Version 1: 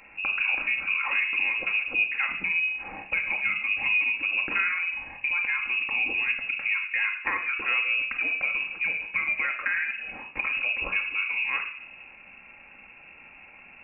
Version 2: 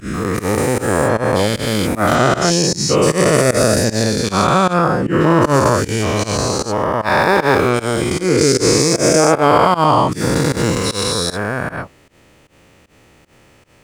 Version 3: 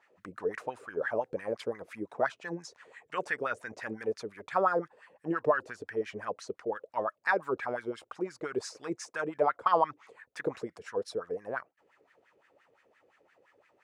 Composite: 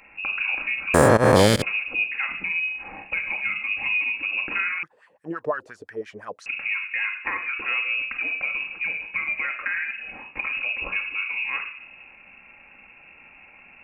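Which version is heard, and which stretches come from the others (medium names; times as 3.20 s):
1
0.94–1.62 s: from 2
4.83–6.46 s: from 3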